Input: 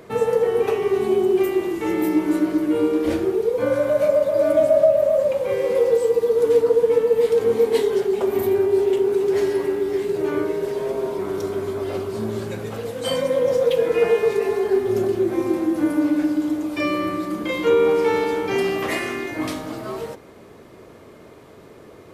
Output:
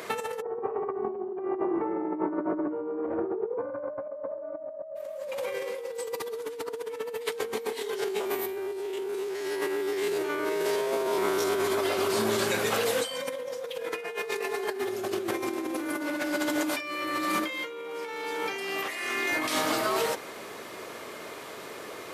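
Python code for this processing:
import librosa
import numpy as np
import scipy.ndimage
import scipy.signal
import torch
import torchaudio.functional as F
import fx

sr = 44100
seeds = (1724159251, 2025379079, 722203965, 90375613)

y = fx.lowpass(x, sr, hz=1100.0, slope=24, at=(0.4, 4.95), fade=0.02)
y = fx.spec_steps(y, sr, hold_ms=50, at=(7.99, 11.62), fade=0.02)
y = fx.reverb_throw(y, sr, start_s=14.85, length_s=2.82, rt60_s=2.5, drr_db=5.0)
y = fx.highpass(y, sr, hz=320.0, slope=6)
y = fx.tilt_shelf(y, sr, db=-6.0, hz=740.0)
y = fx.over_compress(y, sr, threshold_db=-32.0, ratio=-1.0)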